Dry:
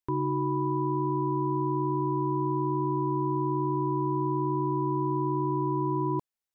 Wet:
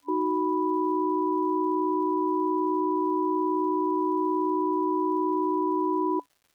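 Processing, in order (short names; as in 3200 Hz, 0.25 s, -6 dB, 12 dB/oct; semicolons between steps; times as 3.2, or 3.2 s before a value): FFT band-pass 280–1000 Hz; crackle 390/s -56 dBFS; gain +3.5 dB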